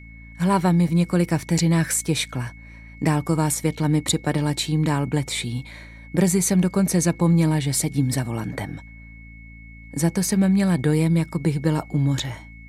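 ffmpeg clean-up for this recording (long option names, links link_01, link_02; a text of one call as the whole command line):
ffmpeg -i in.wav -af "bandreject=frequency=55.9:width_type=h:width=4,bandreject=frequency=111.8:width_type=h:width=4,bandreject=frequency=167.7:width_type=h:width=4,bandreject=frequency=223.6:width_type=h:width=4,bandreject=frequency=279.5:width_type=h:width=4,bandreject=frequency=2200:width=30" out.wav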